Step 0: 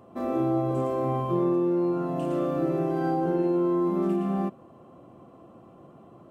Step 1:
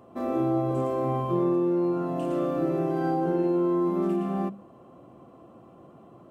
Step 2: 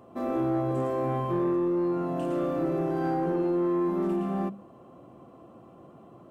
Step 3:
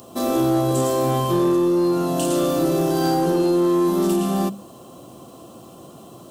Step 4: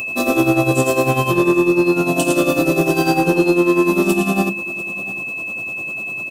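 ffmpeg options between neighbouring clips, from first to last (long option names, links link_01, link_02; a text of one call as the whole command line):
ffmpeg -i in.wav -af "bandreject=frequency=50:width_type=h:width=6,bandreject=frequency=100:width_type=h:width=6,bandreject=frequency=150:width_type=h:width=6,bandreject=frequency=200:width_type=h:width=6" out.wav
ffmpeg -i in.wav -af "asoftclip=type=tanh:threshold=-20dB" out.wav
ffmpeg -i in.wav -af "aexciter=amount=10.2:drive=4:freq=3200,volume=8dB" out.wav
ffmpeg -i in.wav -af "tremolo=f=10:d=0.74,aeval=exprs='val(0)+0.0355*sin(2*PI*2600*n/s)':channel_layout=same,aecho=1:1:696:0.112,volume=6.5dB" out.wav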